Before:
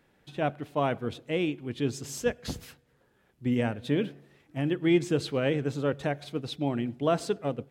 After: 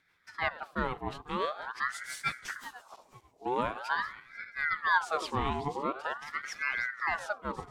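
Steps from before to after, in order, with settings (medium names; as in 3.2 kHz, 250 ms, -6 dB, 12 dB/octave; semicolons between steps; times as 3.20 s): backward echo that repeats 247 ms, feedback 50%, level -13 dB; rotary cabinet horn 6 Hz, later 0.75 Hz, at 2.51 s; ring modulator with a swept carrier 1.2 kHz, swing 55%, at 0.45 Hz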